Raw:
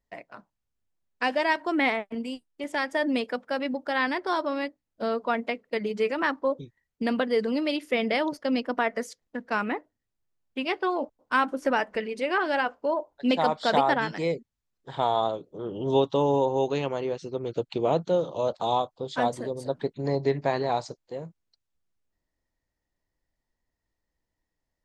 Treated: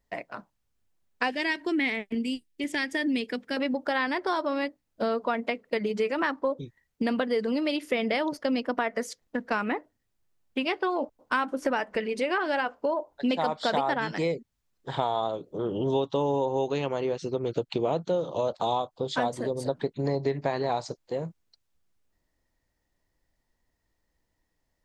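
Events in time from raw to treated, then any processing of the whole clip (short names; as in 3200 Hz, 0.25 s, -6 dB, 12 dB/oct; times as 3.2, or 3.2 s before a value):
1.3–3.57 band shelf 870 Hz -12 dB
whole clip: compressor 3:1, threshold -32 dBFS; gain +6 dB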